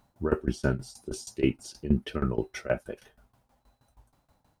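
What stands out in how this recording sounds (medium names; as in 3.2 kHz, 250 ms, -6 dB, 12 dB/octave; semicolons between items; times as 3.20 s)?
a quantiser's noise floor 12-bit, dither none; tremolo saw down 6.3 Hz, depth 90%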